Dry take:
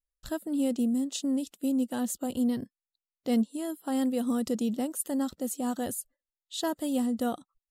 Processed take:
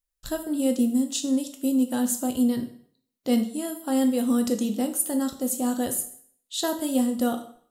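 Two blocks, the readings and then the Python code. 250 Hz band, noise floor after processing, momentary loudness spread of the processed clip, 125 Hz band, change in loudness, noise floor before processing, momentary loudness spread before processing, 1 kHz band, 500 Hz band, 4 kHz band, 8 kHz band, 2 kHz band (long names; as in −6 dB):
+4.5 dB, −82 dBFS, 8 LU, can't be measured, +5.0 dB, below −85 dBFS, 9 LU, +3.5 dB, +5.0 dB, +6.0 dB, +8.0 dB, +5.0 dB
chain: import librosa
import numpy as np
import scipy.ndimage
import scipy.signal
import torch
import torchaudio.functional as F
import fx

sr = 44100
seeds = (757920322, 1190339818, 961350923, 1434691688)

y = fx.high_shelf(x, sr, hz=5400.0, db=5.5)
y = fx.rev_plate(y, sr, seeds[0], rt60_s=0.57, hf_ratio=0.95, predelay_ms=0, drr_db=5.0)
y = y * librosa.db_to_amplitude(3.0)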